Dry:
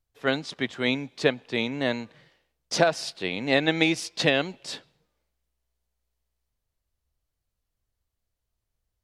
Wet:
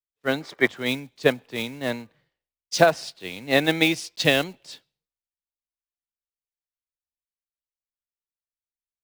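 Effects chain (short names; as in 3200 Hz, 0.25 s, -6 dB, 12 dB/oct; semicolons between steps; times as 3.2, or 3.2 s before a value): block floating point 5-bit; spectral gain 0.41–0.68, 300–2400 Hz +9 dB; three-band expander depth 100%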